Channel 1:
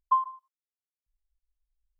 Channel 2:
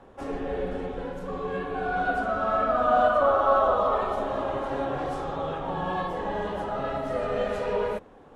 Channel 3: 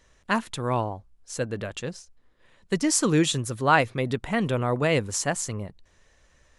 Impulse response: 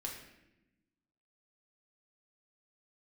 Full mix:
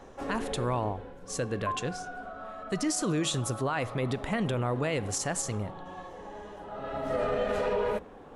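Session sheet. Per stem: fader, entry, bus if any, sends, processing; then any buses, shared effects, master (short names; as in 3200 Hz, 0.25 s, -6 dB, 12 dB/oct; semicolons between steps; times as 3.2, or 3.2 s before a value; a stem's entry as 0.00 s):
-7.5 dB, 1.55 s, no send, dry
+2.0 dB, 0.00 s, send -22.5 dB, limiter -20.5 dBFS, peak gain reduction 10 dB; notches 60/120/180 Hz; auto duck -18 dB, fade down 1.20 s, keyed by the third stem
-1.5 dB, 0.00 s, send -13.5 dB, limiter -17.5 dBFS, peak gain reduction 11 dB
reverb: on, RT60 0.95 s, pre-delay 3 ms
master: limiter -20.5 dBFS, peak gain reduction 5 dB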